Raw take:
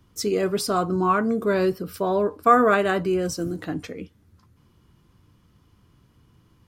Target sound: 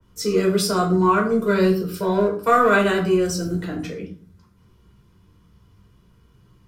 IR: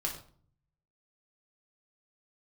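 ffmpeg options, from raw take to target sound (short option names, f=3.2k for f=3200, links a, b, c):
-filter_complex "[0:a]acrossover=split=370|590|5000[a][b][c][d];[b]asoftclip=type=hard:threshold=-30dB[e];[a][e][c][d]amix=inputs=4:normalize=0[f];[1:a]atrim=start_sample=2205,asetrate=52920,aresample=44100[g];[f][g]afir=irnorm=-1:irlink=0,adynamicequalizer=threshold=0.0282:dfrequency=2100:dqfactor=0.7:tfrequency=2100:tqfactor=0.7:attack=5:release=100:ratio=0.375:range=2.5:mode=boostabove:tftype=highshelf"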